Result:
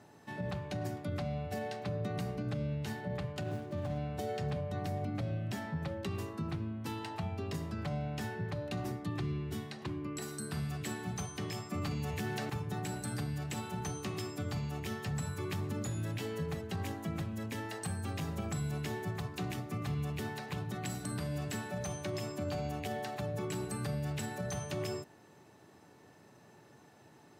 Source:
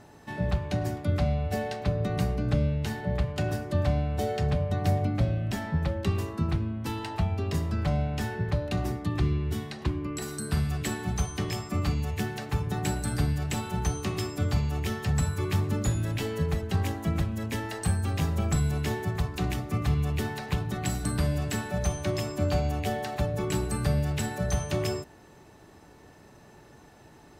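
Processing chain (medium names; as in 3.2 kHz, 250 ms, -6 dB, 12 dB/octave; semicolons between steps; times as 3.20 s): 3.41–3.98 s: median filter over 25 samples; high-pass 100 Hz 24 dB/octave; peak limiter -22 dBFS, peak gain reduction 7.5 dB; 11.72–12.50 s: level flattener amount 70%; trim -6 dB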